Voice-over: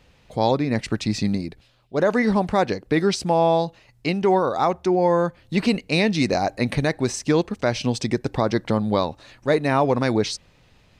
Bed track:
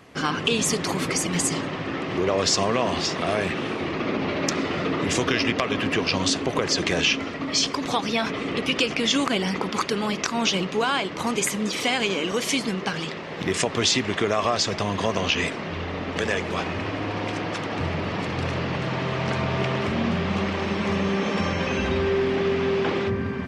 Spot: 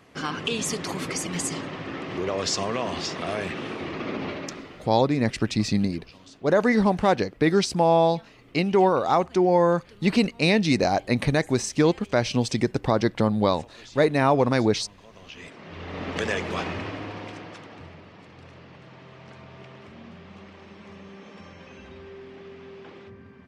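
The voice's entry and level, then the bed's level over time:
4.50 s, -0.5 dB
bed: 4.28 s -5 dB
5.04 s -27 dB
15.07 s -27 dB
16.04 s -2 dB
16.68 s -2 dB
18.11 s -20.5 dB

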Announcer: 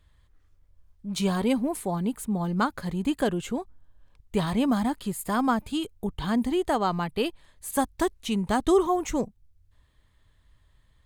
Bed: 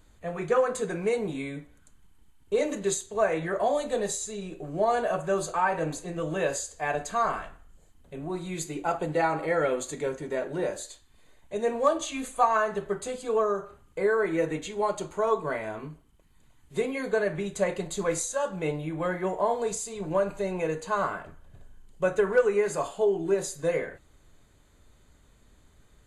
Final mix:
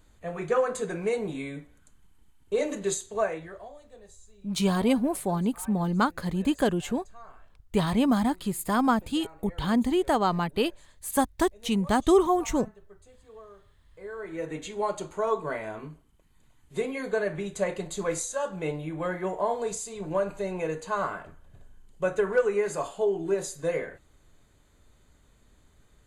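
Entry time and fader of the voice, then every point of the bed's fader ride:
3.40 s, +1.0 dB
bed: 3.20 s -1 dB
3.76 s -23 dB
13.78 s -23 dB
14.64 s -1.5 dB

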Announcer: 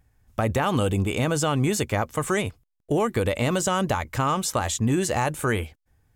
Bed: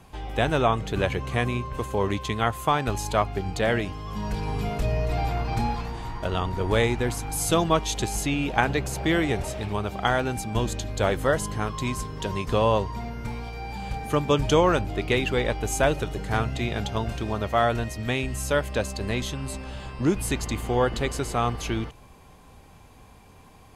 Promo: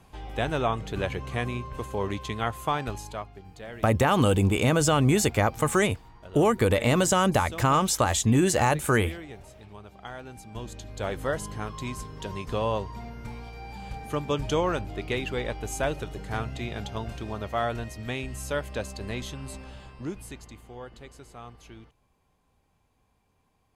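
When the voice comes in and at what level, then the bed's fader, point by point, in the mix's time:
3.45 s, +1.5 dB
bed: 2.82 s -4.5 dB
3.38 s -17.5 dB
10.07 s -17.5 dB
11.24 s -6 dB
19.62 s -6 dB
20.67 s -19.5 dB

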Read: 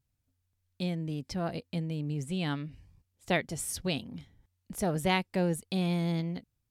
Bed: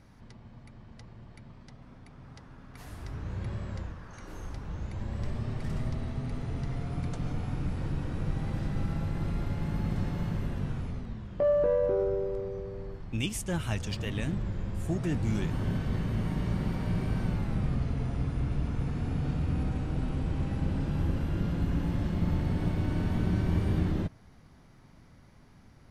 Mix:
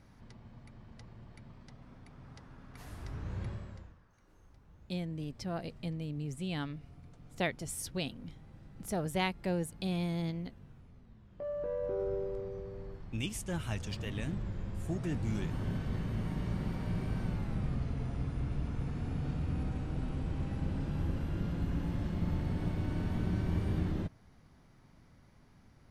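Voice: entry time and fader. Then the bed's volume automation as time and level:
4.10 s, -4.5 dB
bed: 3.44 s -3 dB
4.13 s -21.5 dB
10.89 s -21.5 dB
12.14 s -5 dB

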